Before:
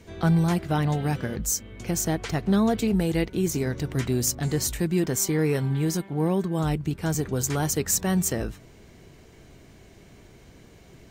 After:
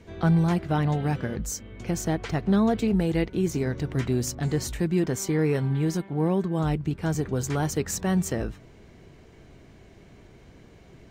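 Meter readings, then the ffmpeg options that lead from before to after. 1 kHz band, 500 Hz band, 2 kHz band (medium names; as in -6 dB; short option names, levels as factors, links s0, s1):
-0.5 dB, 0.0 dB, -1.0 dB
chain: -af "lowpass=f=3200:p=1"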